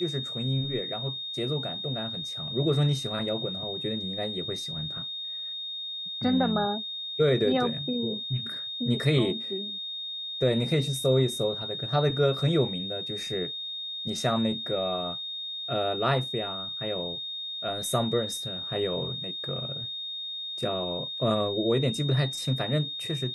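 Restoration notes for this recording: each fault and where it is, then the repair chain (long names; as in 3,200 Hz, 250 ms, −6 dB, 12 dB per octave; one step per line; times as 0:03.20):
whistle 3,700 Hz −33 dBFS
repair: notch filter 3,700 Hz, Q 30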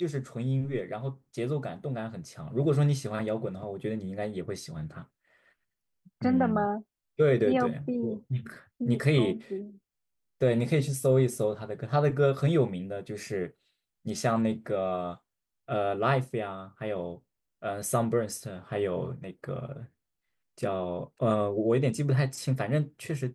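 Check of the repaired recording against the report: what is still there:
none of them is left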